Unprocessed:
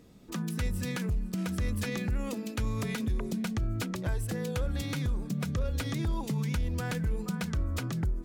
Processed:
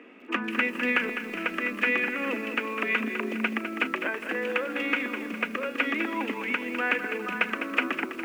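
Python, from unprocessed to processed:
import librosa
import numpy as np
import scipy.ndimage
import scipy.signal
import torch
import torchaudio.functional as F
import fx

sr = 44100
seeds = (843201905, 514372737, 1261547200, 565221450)

y = scipy.signal.sosfilt(scipy.signal.butter(12, 230.0, 'highpass', fs=sr, output='sos'), x)
y = fx.rider(y, sr, range_db=5, speed_s=2.0)
y = fx.curve_eq(y, sr, hz=(840.0, 1200.0, 2700.0, 3900.0, 10000.0), db=(0, 5, 12, -17, -25))
y = fx.echo_crushed(y, sr, ms=204, feedback_pct=55, bits=9, wet_db=-8.5)
y = y * 10.0 ** (6.0 / 20.0)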